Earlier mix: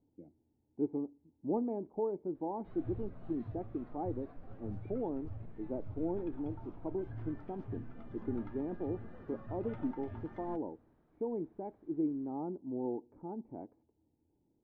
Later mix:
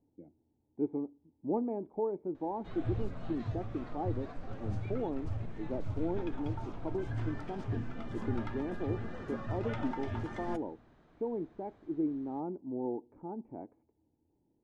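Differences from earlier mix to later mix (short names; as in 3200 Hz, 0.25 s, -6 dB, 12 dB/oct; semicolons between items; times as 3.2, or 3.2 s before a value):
background +7.5 dB; master: remove tape spacing loss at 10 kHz 29 dB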